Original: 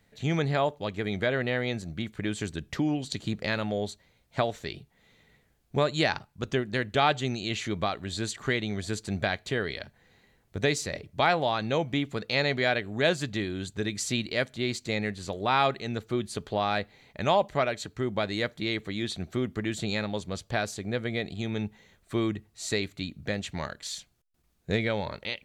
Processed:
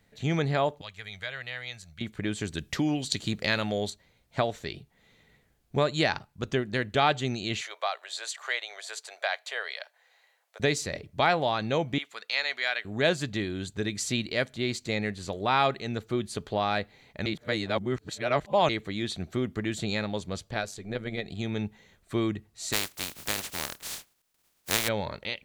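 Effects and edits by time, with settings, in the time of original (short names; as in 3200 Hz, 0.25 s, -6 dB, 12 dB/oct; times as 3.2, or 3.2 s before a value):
0.81–2.01 passive tone stack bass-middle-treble 10-0-10
2.52–3.9 high shelf 2100 Hz +7.5 dB
7.61–10.6 steep high-pass 570 Hz
11.98–12.85 HPF 1100 Hz
17.26–18.69 reverse
20.5–21.29 AM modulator 98 Hz, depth 50%
22.72–24.87 spectral contrast lowered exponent 0.19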